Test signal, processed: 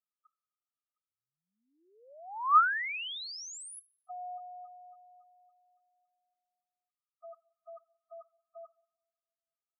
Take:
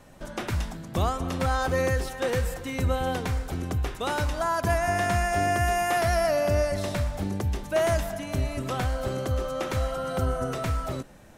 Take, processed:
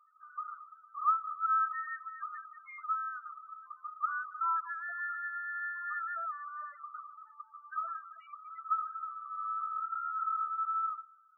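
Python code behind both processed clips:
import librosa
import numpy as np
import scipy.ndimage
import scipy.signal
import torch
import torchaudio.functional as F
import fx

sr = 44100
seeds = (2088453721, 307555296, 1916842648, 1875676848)

y = fx.ladder_highpass(x, sr, hz=1200.0, resonance_pct=85)
y = fx.rev_double_slope(y, sr, seeds[0], early_s=0.6, late_s=2.3, knee_db=-18, drr_db=17.0)
y = fx.spec_topn(y, sr, count=4)
y = y * librosa.db_to_amplitude(1.0)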